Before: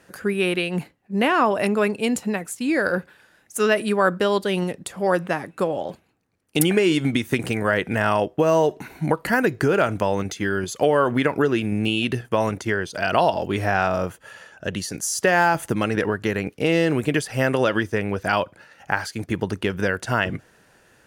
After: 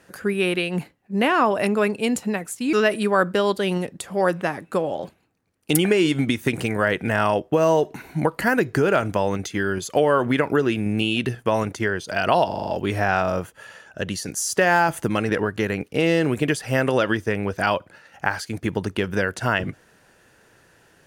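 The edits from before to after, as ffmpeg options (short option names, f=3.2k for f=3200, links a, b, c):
-filter_complex "[0:a]asplit=7[a][b][c][d][e][f][g];[a]atrim=end=2.732[h];[b]atrim=start=3.588:end=13.372[i];[c]atrim=start=13.328:end=13.372[j];[d]atrim=start=13.328:end=13.372[k];[e]atrim=start=13.328:end=13.372[l];[f]atrim=start=13.328:end=13.372[m];[g]atrim=start=13.328[n];[h][i]acrossfade=d=0.004:c1=hsin:c2=hsin[o];[o][j]acrossfade=d=0.004:c1=hsin:c2=hsin[p];[p][k]acrossfade=d=0.004:c1=hsin:c2=hsin[q];[q][l]acrossfade=d=0.004:c1=hsin:c2=hsin[r];[r][m]acrossfade=d=0.004:c1=hsin:c2=hsin[s];[s][n]acrossfade=d=0.004:c1=hsin:c2=hsin"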